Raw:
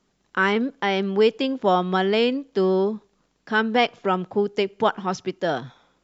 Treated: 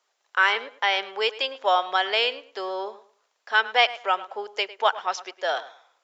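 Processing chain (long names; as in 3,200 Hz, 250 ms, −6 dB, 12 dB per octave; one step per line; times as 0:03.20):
high-pass filter 580 Hz 24 dB per octave
dynamic equaliser 3,100 Hz, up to +5 dB, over −36 dBFS, Q 0.8
tape delay 106 ms, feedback 25%, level −15.5 dB, low-pass 3,100 Hz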